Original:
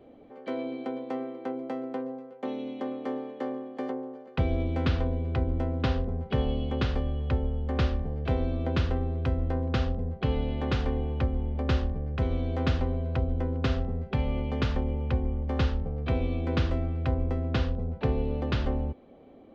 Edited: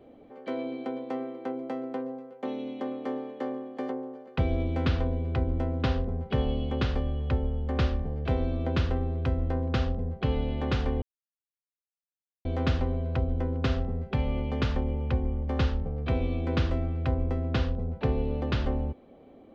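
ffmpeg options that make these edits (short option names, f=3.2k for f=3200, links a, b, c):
-filter_complex "[0:a]asplit=3[a][b][c];[a]atrim=end=11.02,asetpts=PTS-STARTPTS,afade=t=out:st=11.016:d=0.004:c=hsin[d];[b]atrim=start=11.02:end=12.45,asetpts=PTS-STARTPTS,volume=0[e];[c]atrim=start=12.45,asetpts=PTS-STARTPTS,afade=t=in:d=0.004:c=hsin[f];[d][e][f]concat=n=3:v=0:a=1"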